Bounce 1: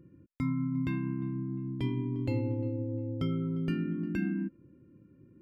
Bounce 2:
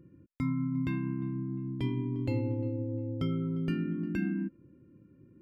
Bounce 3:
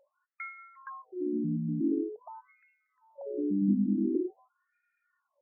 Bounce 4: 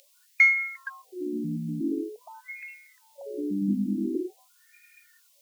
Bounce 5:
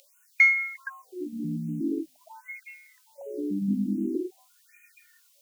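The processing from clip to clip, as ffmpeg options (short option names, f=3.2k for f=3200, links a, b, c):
-af anull
-af "afreqshift=33,afftfilt=real='re*between(b*sr/1024,210*pow(1900/210,0.5+0.5*sin(2*PI*0.46*pts/sr))/1.41,210*pow(1900/210,0.5+0.5*sin(2*PI*0.46*pts/sr))*1.41)':imag='im*between(b*sr/1024,210*pow(1900/210,0.5+0.5*sin(2*PI*0.46*pts/sr))/1.41,210*pow(1900/210,0.5+0.5*sin(2*PI*0.46*pts/sr))*1.41)':win_size=1024:overlap=0.75,volume=7dB"
-af "aexciter=amount=15.8:drive=9.6:freq=2k"
-af "afftfilt=real='re*(1-between(b*sr/1024,370*pow(4400/370,0.5+0.5*sin(2*PI*1.3*pts/sr))/1.41,370*pow(4400/370,0.5+0.5*sin(2*PI*1.3*pts/sr))*1.41))':imag='im*(1-between(b*sr/1024,370*pow(4400/370,0.5+0.5*sin(2*PI*1.3*pts/sr))/1.41,370*pow(4400/370,0.5+0.5*sin(2*PI*1.3*pts/sr))*1.41))':win_size=1024:overlap=0.75"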